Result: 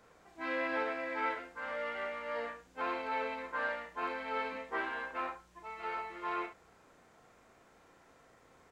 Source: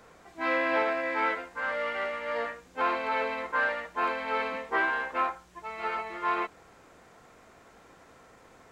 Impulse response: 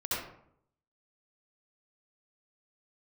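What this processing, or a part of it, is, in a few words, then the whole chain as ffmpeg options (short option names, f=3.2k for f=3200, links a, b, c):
slapback doubling: -filter_complex "[0:a]asplit=3[a][b][c];[b]adelay=34,volume=-6dB[d];[c]adelay=69,volume=-11.5dB[e];[a][d][e]amix=inputs=3:normalize=0,volume=-8.5dB"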